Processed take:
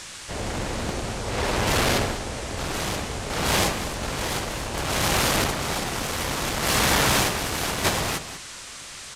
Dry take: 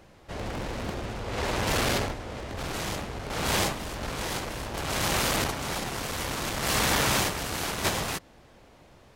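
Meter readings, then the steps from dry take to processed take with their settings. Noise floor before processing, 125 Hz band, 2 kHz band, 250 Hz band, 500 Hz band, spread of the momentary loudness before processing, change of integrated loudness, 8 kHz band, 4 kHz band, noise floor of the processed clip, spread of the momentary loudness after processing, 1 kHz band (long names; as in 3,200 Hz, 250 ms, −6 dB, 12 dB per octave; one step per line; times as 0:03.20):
−55 dBFS, +4.5 dB, +4.5 dB, +4.5 dB, +4.5 dB, 10 LU, +4.5 dB, +5.0 dB, +4.5 dB, −40 dBFS, 11 LU, +4.5 dB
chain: noise in a band 900–8,900 Hz −44 dBFS
downsampling to 32,000 Hz
slap from a distant wall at 33 metres, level −11 dB
level +4 dB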